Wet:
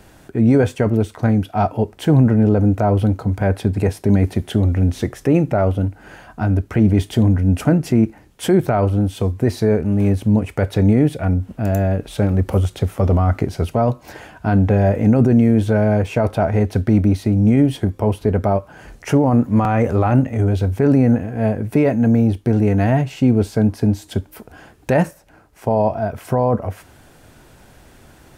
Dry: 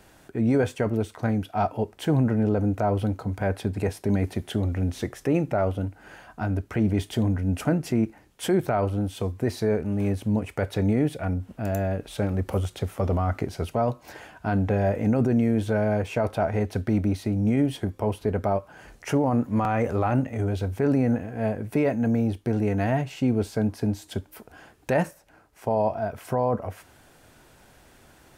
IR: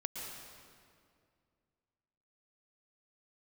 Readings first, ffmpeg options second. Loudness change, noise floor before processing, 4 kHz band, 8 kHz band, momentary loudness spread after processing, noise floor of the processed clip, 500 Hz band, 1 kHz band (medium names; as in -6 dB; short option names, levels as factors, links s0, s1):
+8.5 dB, -55 dBFS, +5.0 dB, no reading, 6 LU, -48 dBFS, +6.5 dB, +6.0 dB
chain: -af "lowshelf=f=330:g=5.5,volume=1.78"